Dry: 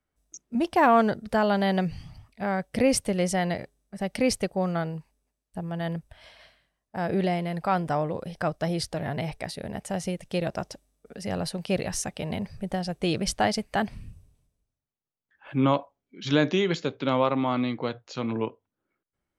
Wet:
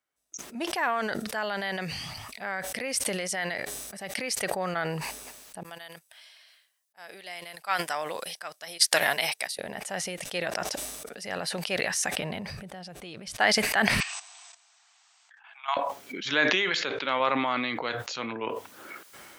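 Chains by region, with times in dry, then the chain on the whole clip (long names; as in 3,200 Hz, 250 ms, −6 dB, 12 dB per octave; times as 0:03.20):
0:00.72–0:04.40: high-shelf EQ 3,800 Hz +4 dB + downward compressor 2 to 1, threshold −31 dBFS
0:05.63–0:09.59: spectral tilt +4 dB per octave + expander for the loud parts 2.5 to 1, over −48 dBFS
0:12.16–0:13.36: bass and treble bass +7 dB, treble −5 dB + downward compressor 4 to 1, threshold −32 dBFS
0:14.00–0:15.77: linear-phase brick-wall band-pass 650–8,500 Hz + output level in coarse steps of 13 dB
0:16.34–0:17.20: low-pass filter 5,000 Hz + low-shelf EQ 250 Hz −7.5 dB
whole clip: high-pass filter 1,100 Hz 6 dB per octave; dynamic equaliser 1,800 Hz, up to +7 dB, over −49 dBFS, Q 1.9; level that may fall only so fast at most 22 dB per second; level +2 dB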